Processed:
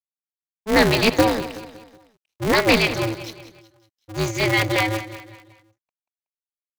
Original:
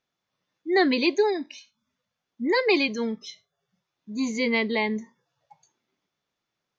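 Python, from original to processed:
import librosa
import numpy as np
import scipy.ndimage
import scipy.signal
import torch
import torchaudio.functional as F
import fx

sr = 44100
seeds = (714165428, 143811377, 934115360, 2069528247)

p1 = fx.low_shelf(x, sr, hz=320.0, db=-3.0)
p2 = np.sign(p1) * np.maximum(np.abs(p1) - 10.0 ** (-44.0 / 20.0), 0.0)
p3 = p2 + fx.echo_feedback(p2, sr, ms=186, feedback_pct=44, wet_db=-13.5, dry=0)
p4 = p3 * np.sign(np.sin(2.0 * np.pi * 110.0 * np.arange(len(p3)) / sr))
y = F.gain(torch.from_numpy(p4), 6.0).numpy()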